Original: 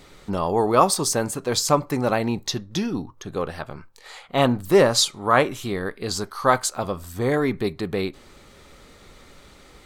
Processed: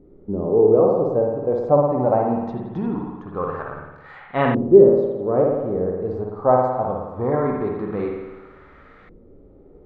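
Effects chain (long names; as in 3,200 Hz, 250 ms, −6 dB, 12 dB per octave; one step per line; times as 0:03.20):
spring reverb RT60 1.1 s, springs 55 ms, chirp 35 ms, DRR 1 dB
auto-filter low-pass saw up 0.22 Hz 350–1,800 Hz
harmonic and percussive parts rebalanced harmonic +5 dB
level −6 dB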